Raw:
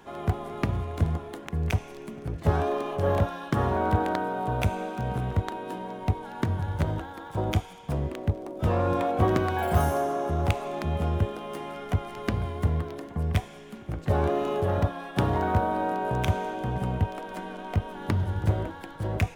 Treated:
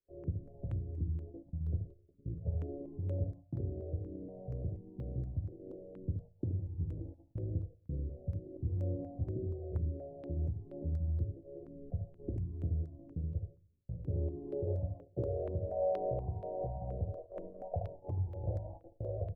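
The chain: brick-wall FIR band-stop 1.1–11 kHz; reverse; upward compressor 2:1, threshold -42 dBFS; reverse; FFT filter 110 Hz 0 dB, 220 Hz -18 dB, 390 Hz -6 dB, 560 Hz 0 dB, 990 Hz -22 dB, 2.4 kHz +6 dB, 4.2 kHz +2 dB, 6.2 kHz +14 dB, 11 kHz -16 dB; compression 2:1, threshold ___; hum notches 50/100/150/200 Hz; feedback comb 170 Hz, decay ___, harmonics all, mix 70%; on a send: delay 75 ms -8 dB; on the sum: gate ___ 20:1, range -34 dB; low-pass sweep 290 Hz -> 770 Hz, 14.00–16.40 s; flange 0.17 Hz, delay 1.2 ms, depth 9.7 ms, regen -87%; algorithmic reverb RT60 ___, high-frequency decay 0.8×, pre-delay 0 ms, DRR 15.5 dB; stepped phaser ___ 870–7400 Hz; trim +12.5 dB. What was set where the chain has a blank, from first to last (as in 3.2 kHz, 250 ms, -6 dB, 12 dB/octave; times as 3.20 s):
-37 dBFS, 0.34 s, -54 dBFS, 0.6 s, 4.2 Hz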